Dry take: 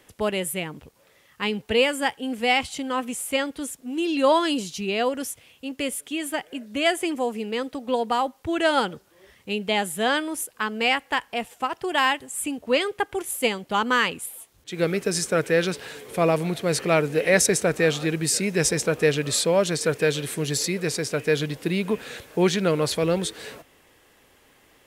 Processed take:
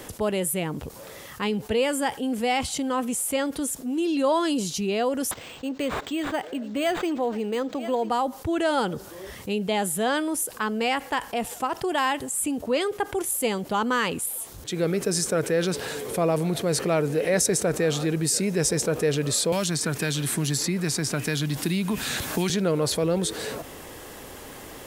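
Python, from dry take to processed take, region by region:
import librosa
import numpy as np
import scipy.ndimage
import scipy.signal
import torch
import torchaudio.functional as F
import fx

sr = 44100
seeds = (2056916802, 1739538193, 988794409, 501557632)

y = fx.chain(x, sr, fx.highpass(hz=220.0, slope=6),
    fx.echo_single(ms=987, db=-20.5),
    fx.resample_linear(factor=4), at=(5.31, 8.1))
y = fx.chain(y, sr, fx.peak_eq(hz=480.0, db=-14.0, octaves=0.63),
    fx.band_squash(depth_pct=100), at=(19.52, 22.5))
y = fx.peak_eq(y, sr, hz=2400.0, db=-7.0, octaves=1.5)
y = fx.env_flatten(y, sr, amount_pct=50)
y = F.gain(torch.from_numpy(y), -3.5).numpy()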